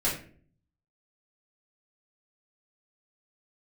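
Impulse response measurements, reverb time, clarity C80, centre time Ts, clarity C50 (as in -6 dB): 0.45 s, 10.5 dB, 32 ms, 5.5 dB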